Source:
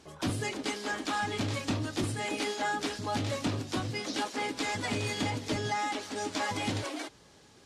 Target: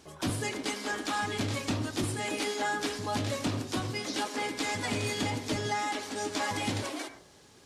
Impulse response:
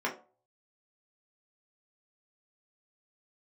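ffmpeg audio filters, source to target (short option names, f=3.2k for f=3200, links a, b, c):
-filter_complex "[0:a]highshelf=f=11k:g=10,asplit=2[a][b];[1:a]atrim=start_sample=2205,adelay=85[c];[b][c]afir=irnorm=-1:irlink=0,volume=-18.5dB[d];[a][d]amix=inputs=2:normalize=0"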